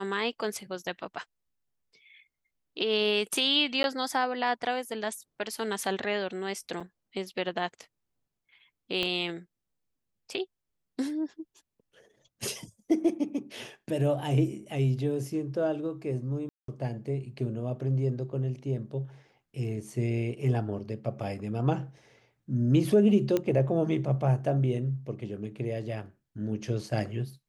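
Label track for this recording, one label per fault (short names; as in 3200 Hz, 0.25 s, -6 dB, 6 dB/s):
3.830000	3.840000	gap 11 ms
6.800000	6.800000	gap 4.9 ms
9.030000	9.030000	pop -16 dBFS
16.490000	16.680000	gap 0.193 s
23.370000	23.370000	pop -14 dBFS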